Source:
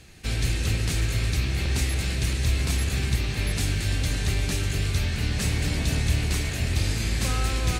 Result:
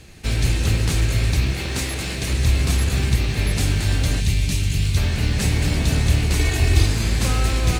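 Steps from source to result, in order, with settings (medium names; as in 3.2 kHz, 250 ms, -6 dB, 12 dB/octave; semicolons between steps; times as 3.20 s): 1.53–2.30 s: bass shelf 120 Hz -12 dB; 6.39–6.86 s: comb 2.7 ms, depth 93%; in parallel at -10 dB: decimation with a swept rate 20×, swing 60% 0.96 Hz; 4.20–4.97 s: on the sum: high-order bell 740 Hz -9.5 dB 2.8 oct; trim +3.5 dB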